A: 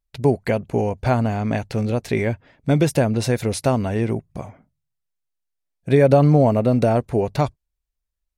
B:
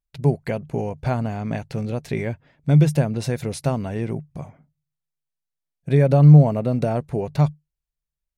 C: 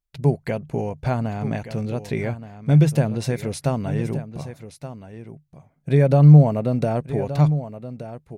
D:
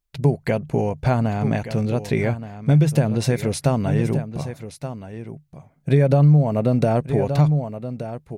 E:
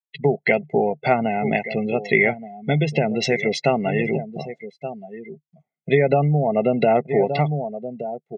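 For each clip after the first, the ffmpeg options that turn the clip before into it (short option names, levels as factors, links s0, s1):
-af "equalizer=f=150:w=6:g=13.5,volume=0.531"
-af "aecho=1:1:1174:0.237"
-af "acompressor=threshold=0.141:ratio=4,volume=1.68"
-af "highpass=f=210:w=0.5412,highpass=f=210:w=1.3066,equalizer=f=250:t=q:w=4:g=-3,equalizer=f=380:t=q:w=4:g=8,equalizer=f=560:t=q:w=4:g=-8,equalizer=f=1300:t=q:w=4:g=-6,equalizer=f=2100:t=q:w=4:g=9,equalizer=f=3100:t=q:w=4:g=7,lowpass=f=7100:w=0.5412,lowpass=f=7100:w=1.3066,aecho=1:1:1.5:0.65,afftdn=nr=31:nf=-31,volume=1.58"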